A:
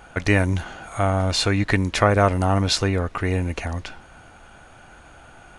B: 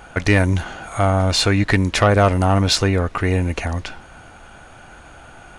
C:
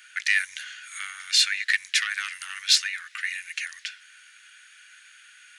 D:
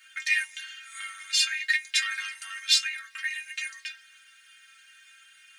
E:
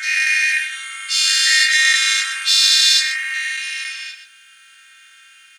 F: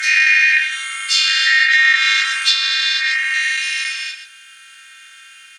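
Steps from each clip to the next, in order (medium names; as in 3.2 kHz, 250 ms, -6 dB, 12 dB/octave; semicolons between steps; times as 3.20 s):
saturation -9 dBFS, distortion -19 dB; trim +4.5 dB
elliptic high-pass 1.7 kHz, stop band 60 dB
inharmonic resonator 67 Hz, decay 0.64 s, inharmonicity 0.03; companded quantiser 8-bit; trim +8.5 dB
every event in the spectrogram widened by 480 ms; delay 129 ms -10 dB; trim +1.5 dB
low-pass that closes with the level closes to 2.3 kHz, closed at -10.5 dBFS; trim +5 dB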